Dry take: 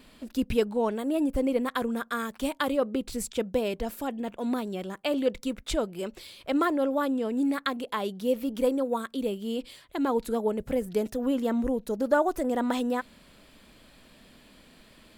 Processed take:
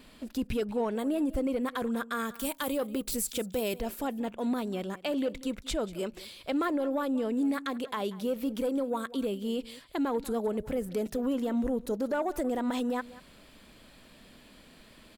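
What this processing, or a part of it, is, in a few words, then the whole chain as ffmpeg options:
soft clipper into limiter: -filter_complex "[0:a]asettb=1/sr,asplit=3[s0][s1][s2];[s0]atrim=end=2.344[s3];[s1]atrim=start=2.34:end=3.78,asetpts=PTS-STARTPTS,afade=t=in:d=0.004:c=qsin,afade=t=out:st=1.436:d=0.004:c=qsin,aemphasis=mode=production:type=50fm[s4];[s2]atrim=start=3.776[s5];[s3][s4]acrossfade=d=0.004:c1=hsin:c2=qsin[s6];[s6][s5]acrossfade=d=0.004:c1=qsin:c2=hsin,asoftclip=type=tanh:threshold=0.158,alimiter=limit=0.0708:level=0:latency=1:release=84,aecho=1:1:188:0.119"

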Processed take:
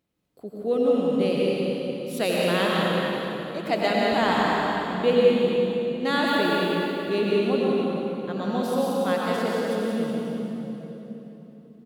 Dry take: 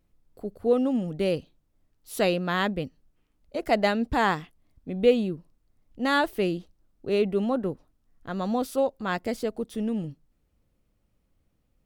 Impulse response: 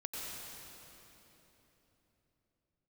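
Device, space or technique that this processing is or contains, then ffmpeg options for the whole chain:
PA in a hall: -filter_complex "[0:a]highpass=140,equalizer=f=3500:t=o:w=0.89:g=4,aecho=1:1:181:0.447[s0];[1:a]atrim=start_sample=2205[s1];[s0][s1]afir=irnorm=-1:irlink=0,volume=1.19"

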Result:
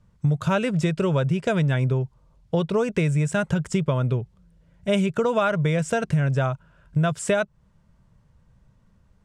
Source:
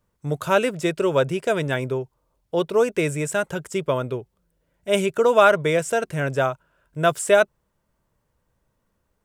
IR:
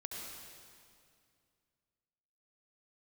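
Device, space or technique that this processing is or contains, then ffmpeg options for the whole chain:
jukebox: -af "lowpass=7100,lowshelf=f=240:t=q:w=1.5:g=9,acompressor=threshold=0.0631:ratio=6,volume=1.78"

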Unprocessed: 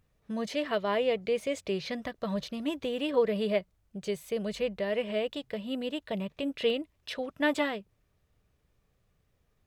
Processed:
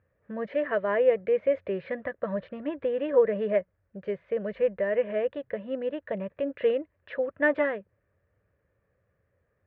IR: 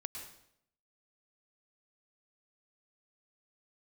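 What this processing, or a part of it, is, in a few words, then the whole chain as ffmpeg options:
bass cabinet: -af "highpass=75,equalizer=f=92:t=q:w=4:g=5,equalizer=f=150:t=q:w=4:g=-4,equalizer=f=240:t=q:w=4:g=-4,equalizer=f=540:t=q:w=4:g=10,equalizer=f=790:t=q:w=4:g=-4,equalizer=f=1700:t=q:w=4:g=8,lowpass=f=2100:w=0.5412,lowpass=f=2100:w=1.3066"

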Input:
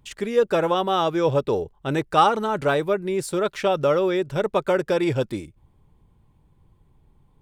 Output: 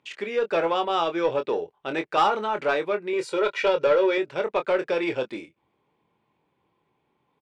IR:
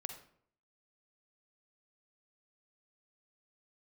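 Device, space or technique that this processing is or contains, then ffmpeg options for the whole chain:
intercom: -filter_complex "[0:a]asettb=1/sr,asplit=3[s0][s1][s2];[s0]atrim=end=3.134[s3];[s1]atrim=start=3.13:end=4.18,asetpts=PTS-STARTPTS,afade=t=in:d=0.004:c=qsin,afade=t=out:st=1.046:d=0.004:c=qsin,aecho=1:1:2.1:0.93,atrim=end_sample=46305[s4];[s2]atrim=start=4.176[s5];[s3][s4]acrossfade=d=0.004:c1=hsin:c2=qsin[s6];[s6][s5]acrossfade=d=0.004:c1=qsin:c2=hsin,highpass=350,lowpass=4400,equalizer=f=2400:t=o:w=0.5:g=6,asoftclip=type=tanh:threshold=0.251,asplit=2[s7][s8];[s8]adelay=24,volume=0.398[s9];[s7][s9]amix=inputs=2:normalize=0,volume=0.841"

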